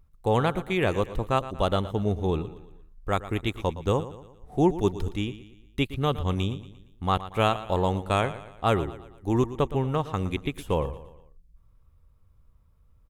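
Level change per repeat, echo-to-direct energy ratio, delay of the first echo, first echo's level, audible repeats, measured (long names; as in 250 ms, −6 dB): −6.5 dB, −13.5 dB, 116 ms, −14.5 dB, 4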